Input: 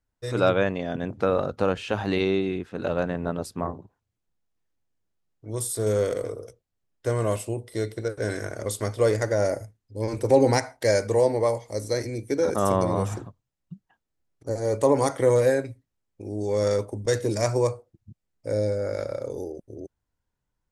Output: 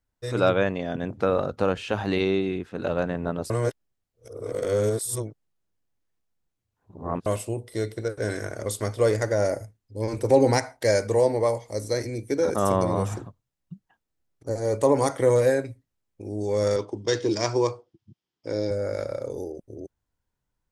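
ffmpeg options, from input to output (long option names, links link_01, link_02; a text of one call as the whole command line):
ffmpeg -i in.wav -filter_complex "[0:a]asettb=1/sr,asplit=3[link_01][link_02][link_03];[link_01]atrim=end=16.764[link_04];[link_02]atrim=start=16.76:end=18.71,asetpts=PTS-STARTPTS,afade=type=in:duration=0.004:curve=qsin,afade=type=out:start_time=1.946:duration=0.004:curve=qsin,highpass=140,equalizer=frequency=220:width_type=q:width=4:gain=-3,equalizer=frequency=340:width_type=q:width=4:gain=6,equalizer=frequency=570:width_type=q:width=4:gain=-6,equalizer=frequency=1000:width_type=q:width=4:gain=4,equalizer=frequency=3200:width_type=q:width=4:gain=10,equalizer=frequency=5100:width_type=q:width=4:gain=6,lowpass=frequency=6500:width=0.5412,lowpass=frequency=6500:width=1.3066[link_05];[link_03]atrim=start=18.706[link_06];[link_04][link_05]acrossfade=duration=0.004:curve1=hsin:curve2=qsin[link_07];[link_07][link_06]acrossfade=duration=0.004:curve1=qsin:curve2=hsin,asplit=3[link_08][link_09][link_10];[link_08]atrim=end=3.502[link_11];[link_09]atrim=start=3.498:end=7.262,asetpts=PTS-STARTPTS,areverse[link_12];[link_10]atrim=start=7.258[link_13];[link_11][link_12]acrossfade=duration=0.004:curve1=hsin:curve2=hsin[link_14];[link_14][link_13]acrossfade=duration=0.004:curve1=hsin:curve2=hsin" out.wav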